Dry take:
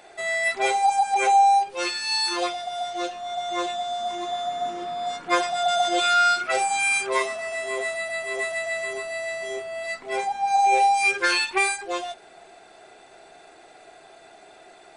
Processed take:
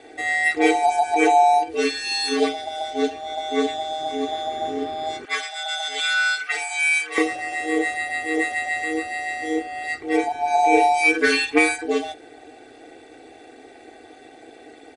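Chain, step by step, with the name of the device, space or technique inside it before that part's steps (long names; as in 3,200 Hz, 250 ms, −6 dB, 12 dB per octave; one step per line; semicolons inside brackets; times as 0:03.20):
ring-modulated robot voice (ring modulation 79 Hz; comb filter 2.6 ms, depth 87%)
0:05.25–0:07.18: Chebyshev high-pass filter 1,500 Hz, order 2
octave-band graphic EQ 125/250/500/1,000/2,000 Hz +6/+11/+8/−7/+5 dB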